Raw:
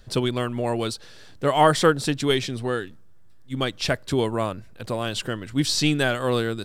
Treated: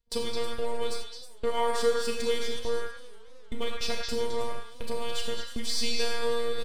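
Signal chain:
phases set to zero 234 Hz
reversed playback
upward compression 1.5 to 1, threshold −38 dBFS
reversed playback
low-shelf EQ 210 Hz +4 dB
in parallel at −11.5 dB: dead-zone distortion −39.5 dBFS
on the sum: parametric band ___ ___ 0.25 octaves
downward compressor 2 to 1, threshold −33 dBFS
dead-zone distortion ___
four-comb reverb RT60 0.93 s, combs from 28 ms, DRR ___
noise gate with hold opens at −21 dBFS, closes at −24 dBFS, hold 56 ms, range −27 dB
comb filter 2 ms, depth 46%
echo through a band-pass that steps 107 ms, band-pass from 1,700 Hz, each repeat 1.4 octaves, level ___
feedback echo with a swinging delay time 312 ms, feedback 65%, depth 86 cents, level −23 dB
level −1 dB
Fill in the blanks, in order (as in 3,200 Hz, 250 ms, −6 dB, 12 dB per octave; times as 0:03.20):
1,500 Hz, −12.5 dB, −49.5 dBFS, 1.5 dB, −0.5 dB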